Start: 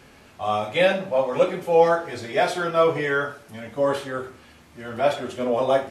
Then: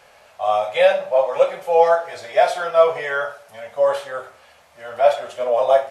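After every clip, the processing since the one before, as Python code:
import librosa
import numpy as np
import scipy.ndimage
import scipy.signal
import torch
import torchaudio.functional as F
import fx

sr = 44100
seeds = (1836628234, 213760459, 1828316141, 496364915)

y = fx.low_shelf_res(x, sr, hz=430.0, db=-11.5, q=3.0)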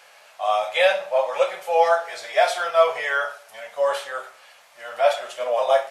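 y = fx.highpass(x, sr, hz=1300.0, slope=6)
y = y * librosa.db_to_amplitude(3.5)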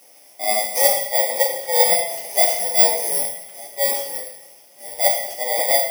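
y = fx.bit_reversed(x, sr, seeds[0], block=32)
y = fx.rev_double_slope(y, sr, seeds[1], early_s=0.82, late_s=3.2, knee_db=-24, drr_db=2.5)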